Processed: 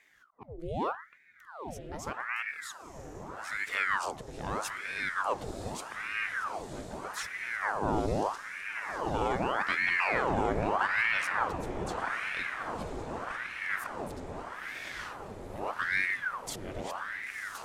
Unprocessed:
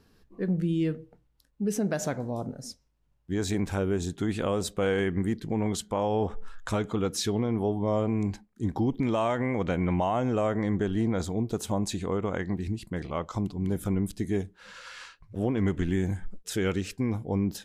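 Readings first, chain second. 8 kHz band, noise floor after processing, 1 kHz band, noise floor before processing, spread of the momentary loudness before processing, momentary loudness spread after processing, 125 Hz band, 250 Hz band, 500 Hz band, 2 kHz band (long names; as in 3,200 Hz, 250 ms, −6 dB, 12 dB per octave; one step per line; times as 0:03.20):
−6.5 dB, −51 dBFS, +2.5 dB, −68 dBFS, 8 LU, 14 LU, −13.0 dB, −13.5 dB, −7.5 dB, +9.5 dB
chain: volume swells 527 ms
feedback delay with all-pass diffusion 1,012 ms, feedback 73%, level −8 dB
ring modulator whose carrier an LFO sweeps 1,100 Hz, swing 85%, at 0.81 Hz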